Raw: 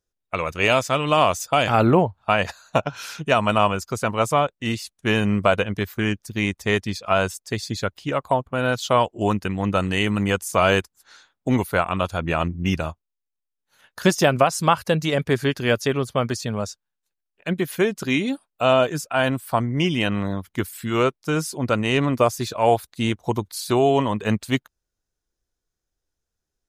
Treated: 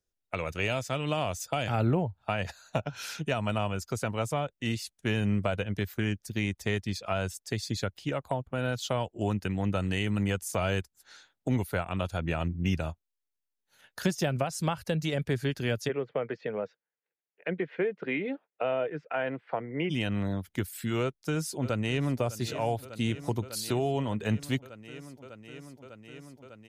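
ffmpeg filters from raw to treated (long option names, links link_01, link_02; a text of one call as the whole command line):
ffmpeg -i in.wav -filter_complex "[0:a]asplit=3[link_01][link_02][link_03];[link_01]afade=type=out:start_time=15.88:duration=0.02[link_04];[link_02]highpass=frequency=180:width=0.5412,highpass=frequency=180:width=1.3066,equalizer=frequency=230:width_type=q:width=4:gain=-9,equalizer=frequency=470:width_type=q:width=4:gain=9,equalizer=frequency=2000:width_type=q:width=4:gain=5,lowpass=frequency=2500:width=0.5412,lowpass=frequency=2500:width=1.3066,afade=type=in:start_time=15.88:duration=0.02,afade=type=out:start_time=19.89:duration=0.02[link_05];[link_03]afade=type=in:start_time=19.89:duration=0.02[link_06];[link_04][link_05][link_06]amix=inputs=3:normalize=0,asplit=2[link_07][link_08];[link_08]afade=type=in:start_time=21.02:duration=0.01,afade=type=out:start_time=22.19:duration=0.01,aecho=0:1:600|1200|1800|2400|3000|3600|4200|4800|5400|6000|6600|7200:0.149624|0.12718|0.108103|0.0918876|0.0781044|0.0663888|0.0564305|0.0479659|0.040771|0.0346554|0.0294571|0.0250385[link_09];[link_07][link_09]amix=inputs=2:normalize=0,equalizer=frequency=1100:width=3.7:gain=-7.5,acrossover=split=150[link_10][link_11];[link_11]acompressor=threshold=-28dB:ratio=2.5[link_12];[link_10][link_12]amix=inputs=2:normalize=0,volume=-3dB" out.wav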